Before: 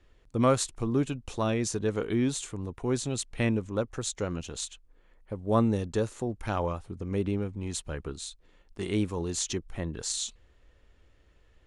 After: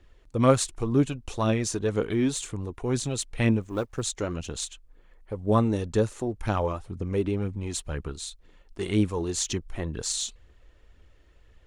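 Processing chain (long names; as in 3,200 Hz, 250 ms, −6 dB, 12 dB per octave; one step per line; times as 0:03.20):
0:03.62–0:04.02: mu-law and A-law mismatch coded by A
phase shifter 2 Hz, delay 3.4 ms, feedback 36%
level +2 dB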